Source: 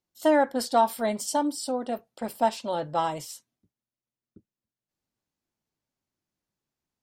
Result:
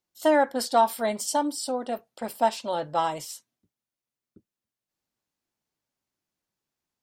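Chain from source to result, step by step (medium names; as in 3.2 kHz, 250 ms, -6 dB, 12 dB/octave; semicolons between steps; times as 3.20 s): bass shelf 330 Hz -6 dB; trim +2 dB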